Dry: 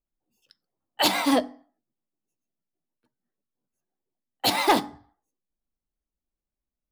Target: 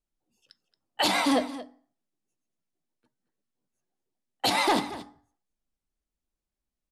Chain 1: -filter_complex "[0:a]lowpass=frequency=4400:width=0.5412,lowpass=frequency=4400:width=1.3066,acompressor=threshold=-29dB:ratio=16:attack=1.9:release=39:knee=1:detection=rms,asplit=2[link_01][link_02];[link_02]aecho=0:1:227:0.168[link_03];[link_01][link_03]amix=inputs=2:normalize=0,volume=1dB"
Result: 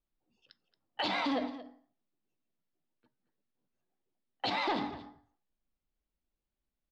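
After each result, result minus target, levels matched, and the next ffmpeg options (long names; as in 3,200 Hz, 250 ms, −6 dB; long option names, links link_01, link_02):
8,000 Hz band −16.0 dB; downward compressor: peak gain reduction +8.5 dB
-filter_complex "[0:a]lowpass=frequency=11000:width=0.5412,lowpass=frequency=11000:width=1.3066,acompressor=threshold=-29dB:ratio=16:attack=1.9:release=39:knee=1:detection=rms,asplit=2[link_01][link_02];[link_02]aecho=0:1:227:0.168[link_03];[link_01][link_03]amix=inputs=2:normalize=0,volume=1dB"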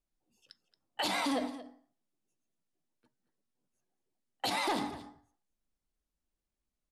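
downward compressor: peak gain reduction +9 dB
-filter_complex "[0:a]lowpass=frequency=11000:width=0.5412,lowpass=frequency=11000:width=1.3066,acompressor=threshold=-19.5dB:ratio=16:attack=1.9:release=39:knee=1:detection=rms,asplit=2[link_01][link_02];[link_02]aecho=0:1:227:0.168[link_03];[link_01][link_03]amix=inputs=2:normalize=0,volume=1dB"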